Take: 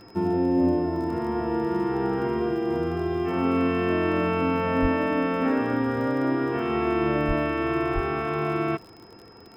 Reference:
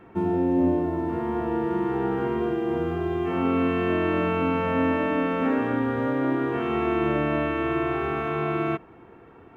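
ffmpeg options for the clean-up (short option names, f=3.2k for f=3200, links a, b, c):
-filter_complex "[0:a]adeclick=t=4,bandreject=f=103.3:t=h:w=4,bandreject=f=206.6:t=h:w=4,bandreject=f=309.9:t=h:w=4,bandreject=f=413.2:t=h:w=4,bandreject=f=516.5:t=h:w=4,bandreject=f=5.1k:w=30,asplit=3[a][b][c];[a]afade=t=out:st=4.81:d=0.02[d];[b]highpass=f=140:w=0.5412,highpass=f=140:w=1.3066,afade=t=in:st=4.81:d=0.02,afade=t=out:st=4.93:d=0.02[e];[c]afade=t=in:st=4.93:d=0.02[f];[d][e][f]amix=inputs=3:normalize=0,asplit=3[g][h][i];[g]afade=t=out:st=7.27:d=0.02[j];[h]highpass=f=140:w=0.5412,highpass=f=140:w=1.3066,afade=t=in:st=7.27:d=0.02,afade=t=out:st=7.39:d=0.02[k];[i]afade=t=in:st=7.39:d=0.02[l];[j][k][l]amix=inputs=3:normalize=0,asplit=3[m][n][o];[m]afade=t=out:st=7.94:d=0.02[p];[n]highpass=f=140:w=0.5412,highpass=f=140:w=1.3066,afade=t=in:st=7.94:d=0.02,afade=t=out:st=8.06:d=0.02[q];[o]afade=t=in:st=8.06:d=0.02[r];[p][q][r]amix=inputs=3:normalize=0"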